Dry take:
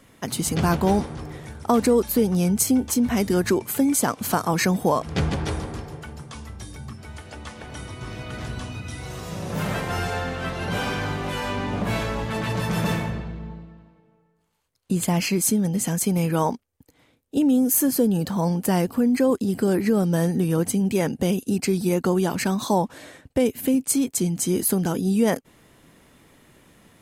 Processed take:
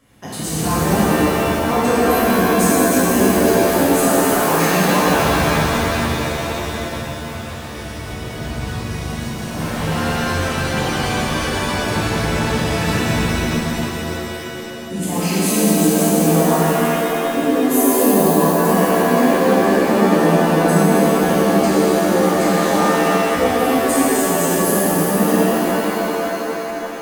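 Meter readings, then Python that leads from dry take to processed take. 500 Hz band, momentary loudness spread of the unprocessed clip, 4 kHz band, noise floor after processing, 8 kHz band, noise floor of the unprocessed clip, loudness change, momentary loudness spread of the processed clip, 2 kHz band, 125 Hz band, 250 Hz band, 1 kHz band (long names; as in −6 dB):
+9.5 dB, 16 LU, +9.5 dB, −29 dBFS, +5.5 dB, −62 dBFS, +6.5 dB, 12 LU, +11.5 dB, +4.5 dB, +5.5 dB, +11.0 dB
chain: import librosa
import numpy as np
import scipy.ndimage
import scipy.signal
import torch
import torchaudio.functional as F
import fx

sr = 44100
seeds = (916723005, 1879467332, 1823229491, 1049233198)

y = fx.rev_shimmer(x, sr, seeds[0], rt60_s=3.7, semitones=7, shimmer_db=-2, drr_db=-10.5)
y = y * 10.0 ** (-7.0 / 20.0)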